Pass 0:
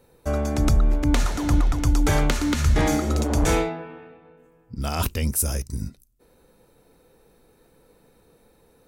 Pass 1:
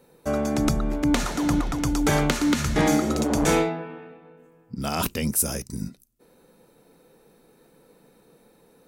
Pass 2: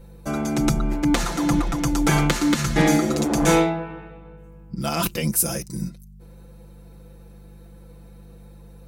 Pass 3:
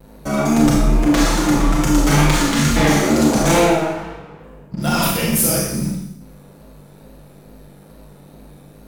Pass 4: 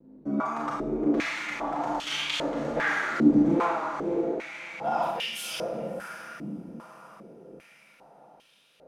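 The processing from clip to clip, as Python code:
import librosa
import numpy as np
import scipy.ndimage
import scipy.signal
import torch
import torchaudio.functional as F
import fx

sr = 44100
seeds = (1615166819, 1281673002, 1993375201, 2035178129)

y1 = fx.low_shelf_res(x, sr, hz=120.0, db=-9.5, q=1.5)
y1 = F.gain(torch.from_numpy(y1), 1.0).numpy()
y2 = fx.add_hum(y1, sr, base_hz=50, snr_db=20)
y2 = y2 + 0.88 * np.pad(y2, (int(5.9 * sr / 1000.0), 0))[:len(y2)]
y3 = fx.vibrato(y2, sr, rate_hz=2.3, depth_cents=84.0)
y3 = fx.leveller(y3, sr, passes=3)
y3 = fx.rev_schroeder(y3, sr, rt60_s=0.8, comb_ms=27, drr_db=-3.0)
y3 = F.gain(torch.from_numpy(y3), -7.0).numpy()
y4 = fx.echo_diffused(y3, sr, ms=603, feedback_pct=49, wet_db=-6.5)
y4 = fx.filter_held_bandpass(y4, sr, hz=2.5, low_hz=280.0, high_hz=3100.0)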